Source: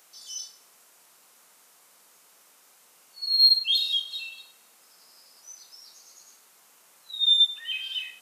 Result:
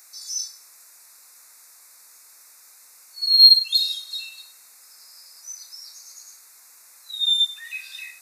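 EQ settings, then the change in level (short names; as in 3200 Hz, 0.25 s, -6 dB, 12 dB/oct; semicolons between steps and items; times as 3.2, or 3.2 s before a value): Butterworth band-stop 3100 Hz, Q 2.2; tilt shelf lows -9 dB; 0.0 dB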